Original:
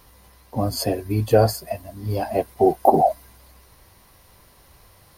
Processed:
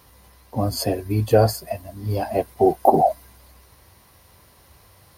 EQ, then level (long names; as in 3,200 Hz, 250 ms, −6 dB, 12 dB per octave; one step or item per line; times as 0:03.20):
high-pass filter 57 Hz
parametric band 76 Hz +4 dB 0.71 octaves
0.0 dB